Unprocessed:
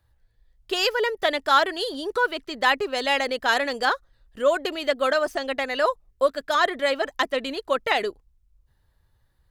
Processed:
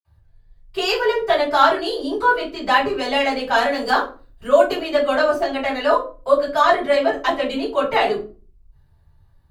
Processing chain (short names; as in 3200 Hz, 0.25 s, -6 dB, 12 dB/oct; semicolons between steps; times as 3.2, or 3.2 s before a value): 3.65–4.73 high shelf 11000 Hz +10.5 dB; reverb RT60 0.35 s, pre-delay 46 ms, DRR -60 dB; gain +2.5 dB